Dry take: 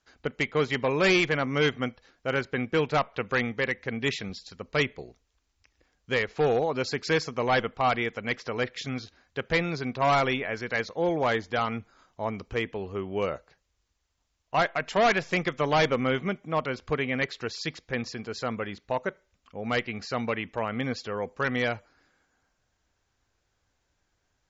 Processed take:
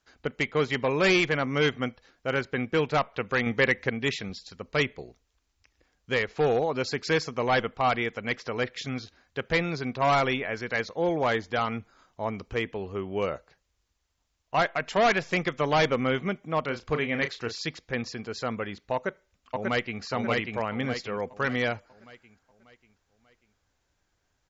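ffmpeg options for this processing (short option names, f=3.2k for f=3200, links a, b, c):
-filter_complex "[0:a]asettb=1/sr,asplit=3[a][b][c];[a]atrim=end=3.464[d];[b]atrim=start=3.46:end=3.9,asetpts=PTS-STARTPTS,afade=t=in:d=0.004:c=qsin,afade=t=out:st=0.436:d=0.004:c=qsin,acontrast=30[e];[c]atrim=start=3.896[f];[d][e]acrossfade=d=0.004:c1=hsin:c2=qsin[g];[g][f]acrossfade=d=0.004:c1=qsin:c2=hsin,asettb=1/sr,asplit=3[h][i][j];[h]atrim=end=16.634[k];[i]atrim=start=16.63:end=17.65,asetpts=PTS-STARTPTS,afade=t=in:d=0.004:c=qsin,afade=t=out:st=1.016:d=0.004:c=qsin,asplit=2[l][m];[m]adelay=34,volume=-9dB[n];[l][n]amix=inputs=2:normalize=0,atrim=end_sample=44982[o];[j]atrim=start=17.646[p];[k][o]acrossfade=d=0.004:c1=hsin:c2=qsin[q];[q][p]acrossfade=d=0.004:c1=qsin:c2=hsin,asplit=2[r][s];[s]afade=t=in:st=18.94:d=0.01,afade=t=out:st=20.02:d=0.01,aecho=0:1:590|1180|1770|2360|2950|3540:0.794328|0.357448|0.160851|0.0723832|0.0325724|0.0146576[t];[r][t]amix=inputs=2:normalize=0"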